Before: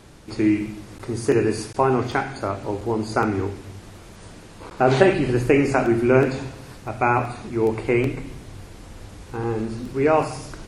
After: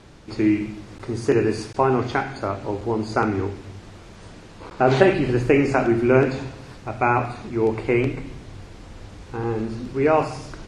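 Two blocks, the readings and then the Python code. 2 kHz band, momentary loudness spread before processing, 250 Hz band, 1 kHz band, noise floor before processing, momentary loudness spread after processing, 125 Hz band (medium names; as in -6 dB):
0.0 dB, 19 LU, 0.0 dB, 0.0 dB, -43 dBFS, 18 LU, 0.0 dB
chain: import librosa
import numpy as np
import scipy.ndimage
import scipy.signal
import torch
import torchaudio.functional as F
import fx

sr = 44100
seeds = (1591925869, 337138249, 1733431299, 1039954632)

y = scipy.signal.sosfilt(scipy.signal.butter(2, 6500.0, 'lowpass', fs=sr, output='sos'), x)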